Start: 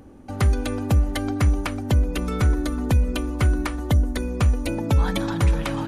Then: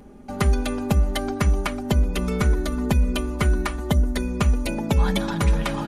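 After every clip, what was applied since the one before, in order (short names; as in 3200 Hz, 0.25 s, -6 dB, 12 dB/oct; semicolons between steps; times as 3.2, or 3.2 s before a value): comb 4.9 ms, depth 65%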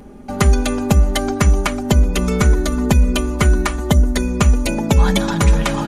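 dynamic EQ 6800 Hz, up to +7 dB, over -54 dBFS, Q 2.6; gain +6.5 dB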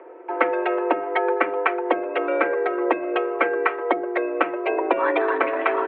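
mistuned SSB +110 Hz 280–2300 Hz; gain +1 dB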